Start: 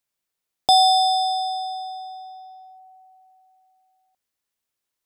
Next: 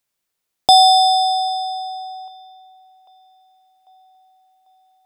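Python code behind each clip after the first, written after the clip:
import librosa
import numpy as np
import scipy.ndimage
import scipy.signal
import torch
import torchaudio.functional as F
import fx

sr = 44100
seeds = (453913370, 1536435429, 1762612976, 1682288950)

y = fx.echo_wet_bandpass(x, sr, ms=795, feedback_pct=52, hz=1200.0, wet_db=-24)
y = y * librosa.db_to_amplitude(5.0)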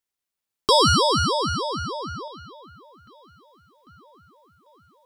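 y = fx.rider(x, sr, range_db=5, speed_s=2.0)
y = fx.ring_lfo(y, sr, carrier_hz=410.0, swing_pct=65, hz=3.3)
y = y * librosa.db_to_amplitude(-2.0)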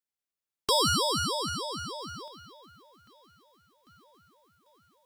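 y = fx.envelope_flatten(x, sr, power=0.6)
y = y * librosa.db_to_amplitude(-8.0)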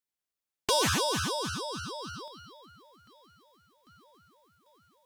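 y = fx.dynamic_eq(x, sr, hz=2400.0, q=0.94, threshold_db=-42.0, ratio=4.0, max_db=-5)
y = fx.doppler_dist(y, sr, depth_ms=0.44)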